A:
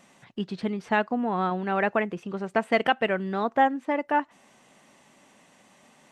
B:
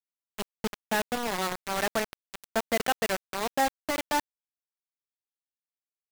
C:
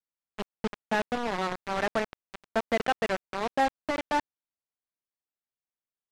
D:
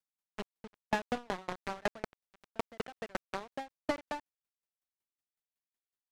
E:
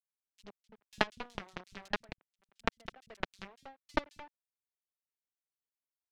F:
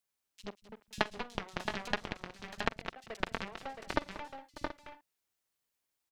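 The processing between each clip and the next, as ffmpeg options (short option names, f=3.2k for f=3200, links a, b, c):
-af "acrusher=bits=3:mix=0:aa=0.000001,volume=-5dB"
-af "adynamicsmooth=sensitivity=1.5:basefreq=2.3k,volume=1dB"
-af "asoftclip=type=tanh:threshold=-24dB,aeval=exprs='val(0)*pow(10,-36*if(lt(mod(5.4*n/s,1),2*abs(5.4)/1000),1-mod(5.4*n/s,1)/(2*abs(5.4)/1000),(mod(5.4*n/s,1)-2*abs(5.4)/1000)/(1-2*abs(5.4)/1000))/20)':c=same,volume=4.5dB"
-filter_complex "[0:a]acrossover=split=170|3500[a][b][c];[a]adelay=50[d];[b]adelay=80[e];[d][e][c]amix=inputs=3:normalize=0,aeval=exprs='0.15*(cos(1*acos(clip(val(0)/0.15,-1,1)))-cos(1*PI/2))+0.0596*(cos(3*acos(clip(val(0)/0.15,-1,1)))-cos(3*PI/2))+0.00473*(cos(5*acos(clip(val(0)/0.15,-1,1)))-cos(5*PI/2))+0.00211*(cos(6*acos(clip(val(0)/0.15,-1,1)))-cos(6*PI/2))+0.00211*(cos(7*acos(clip(val(0)/0.15,-1,1)))-cos(7*PI/2))':c=same,volume=9dB"
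-af "acompressor=threshold=-44dB:ratio=2,aecho=1:1:46|186|594|671|693|730:0.106|0.141|0.112|0.501|0.2|0.168,volume=9dB"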